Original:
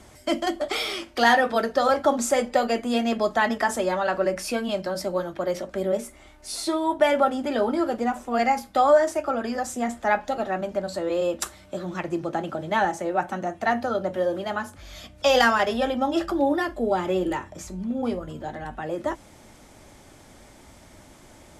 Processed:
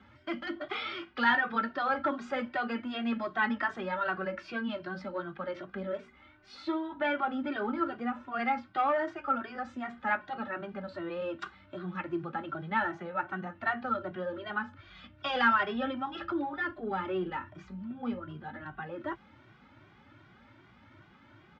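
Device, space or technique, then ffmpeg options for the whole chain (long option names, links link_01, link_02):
barber-pole flanger into a guitar amplifier: -filter_complex "[0:a]asplit=2[link_01][link_02];[link_02]adelay=2,afreqshift=2.6[link_03];[link_01][link_03]amix=inputs=2:normalize=1,asoftclip=type=tanh:threshold=-13dB,highpass=97,equalizer=frequency=110:width_type=q:width=4:gain=6,equalizer=frequency=470:width_type=q:width=4:gain=-9,equalizer=frequency=670:width_type=q:width=4:gain=-9,equalizer=frequency=1400:width_type=q:width=4:gain=8,lowpass=frequency=3400:width=0.5412,lowpass=frequency=3400:width=1.3066,volume=-3.5dB"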